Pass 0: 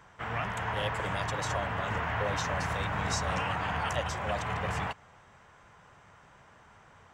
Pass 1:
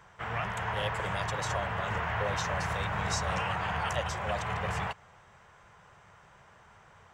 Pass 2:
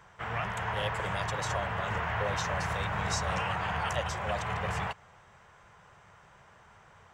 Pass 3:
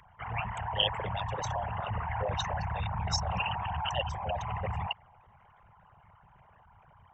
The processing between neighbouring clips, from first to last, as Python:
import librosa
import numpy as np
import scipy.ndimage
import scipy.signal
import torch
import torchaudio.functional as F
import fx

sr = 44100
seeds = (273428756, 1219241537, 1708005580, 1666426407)

y1 = fx.peak_eq(x, sr, hz=270.0, db=-12.0, octaves=0.29)
y2 = y1
y3 = fx.envelope_sharpen(y2, sr, power=3.0)
y3 = fx.high_shelf_res(y3, sr, hz=2100.0, db=9.5, q=3.0)